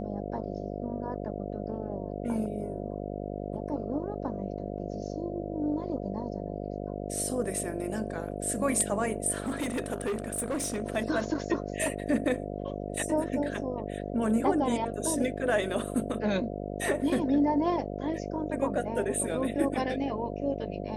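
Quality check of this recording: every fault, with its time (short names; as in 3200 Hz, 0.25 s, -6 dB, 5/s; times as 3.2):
buzz 50 Hz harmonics 14 -36 dBFS
9.4–10.84 clipped -27 dBFS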